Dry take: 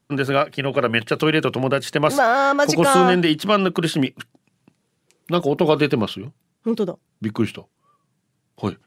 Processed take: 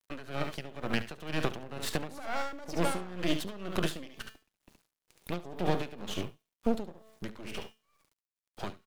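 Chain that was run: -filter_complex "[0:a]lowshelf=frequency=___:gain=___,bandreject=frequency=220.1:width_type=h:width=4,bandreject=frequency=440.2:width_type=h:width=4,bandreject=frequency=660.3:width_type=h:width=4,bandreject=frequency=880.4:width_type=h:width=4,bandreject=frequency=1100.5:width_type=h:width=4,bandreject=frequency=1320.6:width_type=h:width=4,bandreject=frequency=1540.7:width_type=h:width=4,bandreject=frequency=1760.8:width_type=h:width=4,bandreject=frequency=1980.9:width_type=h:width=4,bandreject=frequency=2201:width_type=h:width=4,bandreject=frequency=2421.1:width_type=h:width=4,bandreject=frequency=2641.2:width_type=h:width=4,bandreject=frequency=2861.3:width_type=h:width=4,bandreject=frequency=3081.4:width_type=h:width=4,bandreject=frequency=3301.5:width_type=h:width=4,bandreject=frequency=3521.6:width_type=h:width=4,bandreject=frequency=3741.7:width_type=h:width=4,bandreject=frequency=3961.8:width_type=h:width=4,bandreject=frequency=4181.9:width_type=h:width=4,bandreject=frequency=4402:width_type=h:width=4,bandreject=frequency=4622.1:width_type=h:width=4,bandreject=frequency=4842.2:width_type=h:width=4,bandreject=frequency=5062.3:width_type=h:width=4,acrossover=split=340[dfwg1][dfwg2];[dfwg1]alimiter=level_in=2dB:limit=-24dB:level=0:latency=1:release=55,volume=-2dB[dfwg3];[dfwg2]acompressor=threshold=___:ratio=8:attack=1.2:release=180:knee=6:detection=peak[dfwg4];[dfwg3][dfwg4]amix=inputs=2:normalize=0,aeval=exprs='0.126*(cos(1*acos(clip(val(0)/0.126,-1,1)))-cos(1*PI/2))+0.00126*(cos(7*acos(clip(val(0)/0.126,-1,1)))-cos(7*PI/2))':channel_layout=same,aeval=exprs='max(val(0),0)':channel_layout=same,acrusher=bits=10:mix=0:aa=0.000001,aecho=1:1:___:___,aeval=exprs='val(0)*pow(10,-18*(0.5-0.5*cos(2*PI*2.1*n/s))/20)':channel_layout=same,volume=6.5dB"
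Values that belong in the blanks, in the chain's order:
330, -8, -30dB, 71, 0.316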